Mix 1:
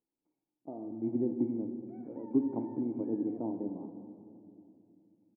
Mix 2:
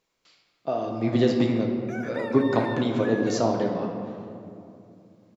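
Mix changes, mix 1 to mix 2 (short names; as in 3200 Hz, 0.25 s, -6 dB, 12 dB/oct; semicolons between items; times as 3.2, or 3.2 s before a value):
speech: send +6.0 dB; master: remove vocal tract filter u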